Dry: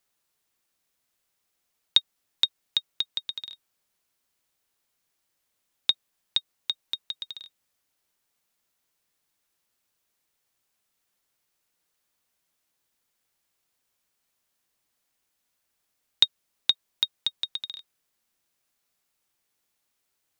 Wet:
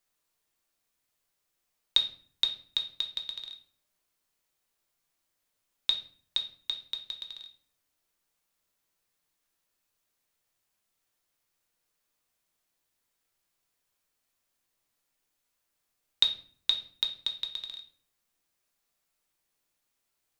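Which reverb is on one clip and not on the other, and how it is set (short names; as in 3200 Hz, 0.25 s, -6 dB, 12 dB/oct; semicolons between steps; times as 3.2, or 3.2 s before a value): shoebox room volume 55 m³, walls mixed, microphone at 0.45 m; gain -4 dB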